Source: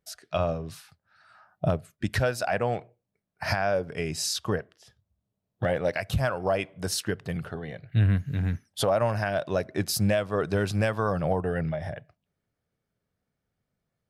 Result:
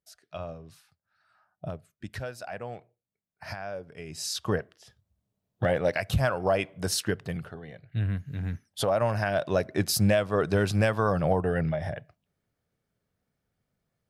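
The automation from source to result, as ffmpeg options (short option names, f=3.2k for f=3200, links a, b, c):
-af "volume=9dB,afade=t=in:st=4.06:d=0.51:silence=0.251189,afade=t=out:st=7.14:d=0.41:silence=0.421697,afade=t=in:st=8.29:d=1.21:silence=0.398107"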